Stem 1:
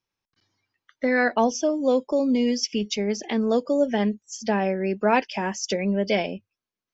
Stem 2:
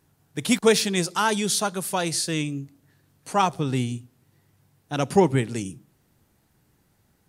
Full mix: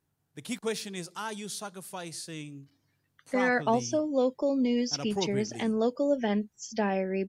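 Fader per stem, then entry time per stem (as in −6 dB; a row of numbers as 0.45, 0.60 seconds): −5.0, −14.0 decibels; 2.30, 0.00 seconds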